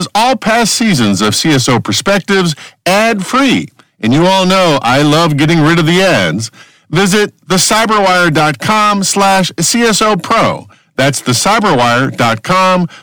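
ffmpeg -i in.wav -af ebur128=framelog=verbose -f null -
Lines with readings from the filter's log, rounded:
Integrated loudness:
  I:          -9.9 LUFS
  Threshold: -20.0 LUFS
Loudness range:
  LRA:         1.4 LU
  Threshold: -30.0 LUFS
  LRA low:   -10.7 LUFS
  LRA high:   -9.3 LUFS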